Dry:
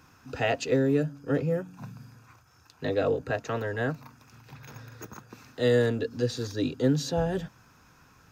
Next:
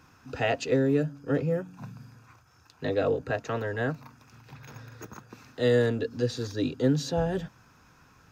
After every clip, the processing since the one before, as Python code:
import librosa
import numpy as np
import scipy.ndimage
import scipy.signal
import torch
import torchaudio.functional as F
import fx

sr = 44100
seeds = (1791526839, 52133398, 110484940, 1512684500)

y = fx.high_shelf(x, sr, hz=8300.0, db=-5.0)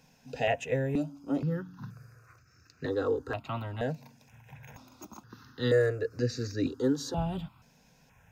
y = fx.phaser_held(x, sr, hz=2.1, low_hz=330.0, high_hz=3300.0)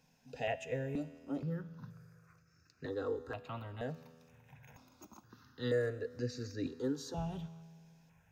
y = fx.comb_fb(x, sr, f0_hz=82.0, decay_s=2.0, harmonics='all', damping=0.0, mix_pct=60)
y = y * 10.0 ** (-1.0 / 20.0)